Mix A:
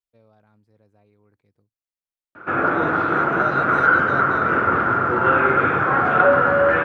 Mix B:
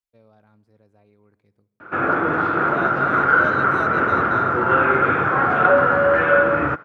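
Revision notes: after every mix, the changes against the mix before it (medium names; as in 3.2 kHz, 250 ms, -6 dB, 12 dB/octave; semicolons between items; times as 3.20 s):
background: entry -0.55 s; reverb: on, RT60 1.5 s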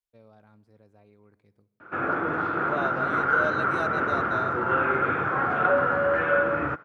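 background -7.0 dB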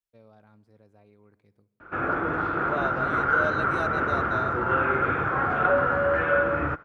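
background: remove high-pass 120 Hz 12 dB/octave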